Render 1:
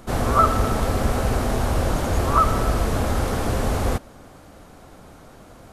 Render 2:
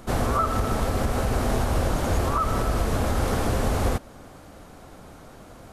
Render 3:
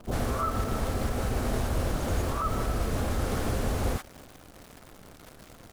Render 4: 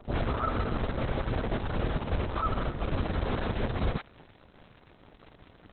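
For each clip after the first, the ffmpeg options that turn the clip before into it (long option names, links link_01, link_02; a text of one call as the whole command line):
ffmpeg -i in.wav -af "alimiter=limit=-13.5dB:level=0:latency=1:release=223" out.wav
ffmpeg -i in.wav -filter_complex "[0:a]acrossover=split=880[link_01][link_02];[link_02]adelay=40[link_03];[link_01][link_03]amix=inputs=2:normalize=0,acrusher=bits=8:dc=4:mix=0:aa=0.000001,volume=-4.5dB" out.wav
ffmpeg -i in.wav -ar 48000 -c:a libopus -b:a 6k out.opus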